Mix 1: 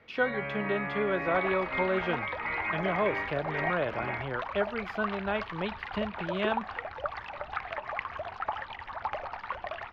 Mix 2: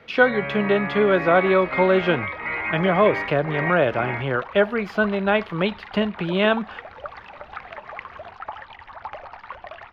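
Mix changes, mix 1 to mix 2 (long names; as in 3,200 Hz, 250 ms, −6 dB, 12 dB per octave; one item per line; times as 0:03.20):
speech +11.5 dB
first sound +8.5 dB
reverb: off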